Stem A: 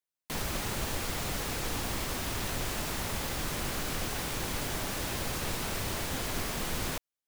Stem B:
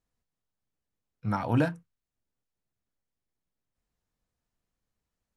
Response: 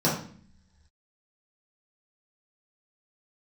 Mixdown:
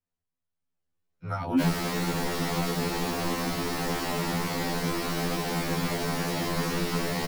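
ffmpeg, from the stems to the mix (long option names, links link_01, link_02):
-filter_complex "[0:a]equalizer=frequency=100:width=1.1:gain=-10,adelay=1300,volume=-5.5dB,asplit=2[link_01][link_02];[link_02]volume=-15dB[link_03];[1:a]acrossover=split=330|3000[link_04][link_05][link_06];[link_05]acompressor=threshold=-35dB:ratio=6[link_07];[link_04][link_07][link_06]amix=inputs=3:normalize=0,volume=-4dB[link_08];[2:a]atrim=start_sample=2205[link_09];[link_03][link_09]afir=irnorm=-1:irlink=0[link_10];[link_01][link_08][link_10]amix=inputs=3:normalize=0,dynaudnorm=framelen=240:gausssize=7:maxgain=10.5dB,highshelf=frequency=3900:gain=-5.5,afftfilt=real='re*2*eq(mod(b,4),0)':imag='im*2*eq(mod(b,4),0)':win_size=2048:overlap=0.75"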